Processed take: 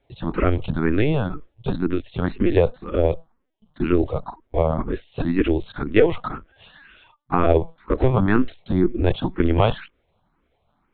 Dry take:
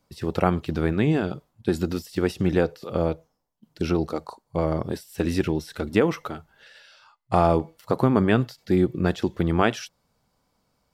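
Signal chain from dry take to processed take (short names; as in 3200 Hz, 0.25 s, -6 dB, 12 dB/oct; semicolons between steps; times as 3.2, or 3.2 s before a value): in parallel at -4.5 dB: soft clip -13.5 dBFS, distortion -14 dB; on the sum: LPC vocoder at 8 kHz pitch kept; endless phaser +2 Hz; gain +3 dB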